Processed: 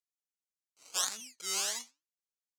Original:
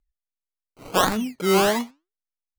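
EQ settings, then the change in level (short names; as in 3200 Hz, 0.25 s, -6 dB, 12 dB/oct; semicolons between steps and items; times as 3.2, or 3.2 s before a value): band-pass 6700 Hz, Q 2; +1.5 dB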